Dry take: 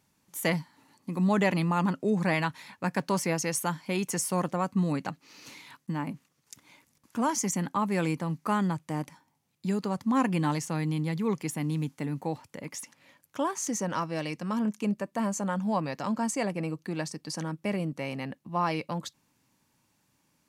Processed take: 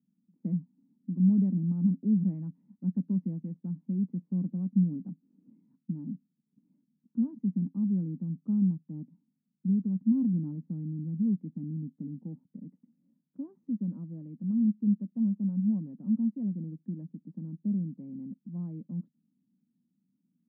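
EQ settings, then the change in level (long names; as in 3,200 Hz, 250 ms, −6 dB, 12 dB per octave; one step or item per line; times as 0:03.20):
flat-topped band-pass 210 Hz, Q 2.6
+3.5 dB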